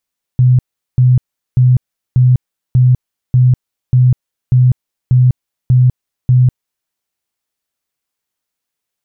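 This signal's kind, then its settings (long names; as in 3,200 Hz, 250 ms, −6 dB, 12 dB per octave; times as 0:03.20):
tone bursts 126 Hz, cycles 25, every 0.59 s, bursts 11, −5 dBFS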